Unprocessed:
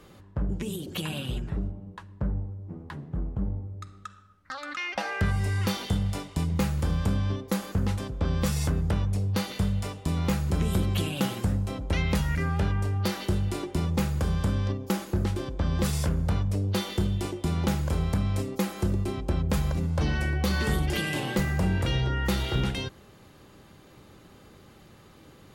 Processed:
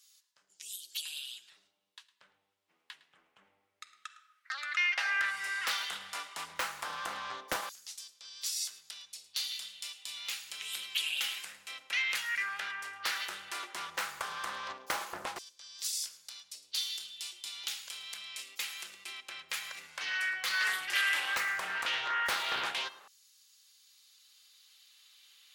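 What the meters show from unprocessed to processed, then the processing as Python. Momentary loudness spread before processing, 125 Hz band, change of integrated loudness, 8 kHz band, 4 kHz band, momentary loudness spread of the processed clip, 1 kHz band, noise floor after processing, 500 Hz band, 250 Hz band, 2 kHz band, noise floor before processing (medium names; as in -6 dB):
8 LU, under -40 dB, -6.0 dB, +1.0 dB, +2.0 dB, 16 LU, -3.0 dB, -76 dBFS, -17.0 dB, -31.5 dB, +3.5 dB, -53 dBFS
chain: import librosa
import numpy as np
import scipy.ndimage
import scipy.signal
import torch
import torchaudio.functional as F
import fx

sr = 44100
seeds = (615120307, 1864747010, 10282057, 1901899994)

y = x + 10.0 ** (-18.5 / 20.0) * np.pad(x, (int(108 * sr / 1000.0), 0))[:len(x)]
y = fx.filter_lfo_highpass(y, sr, shape='saw_down', hz=0.13, low_hz=940.0, high_hz=5700.0, q=1.7)
y = fx.doppler_dist(y, sr, depth_ms=0.52)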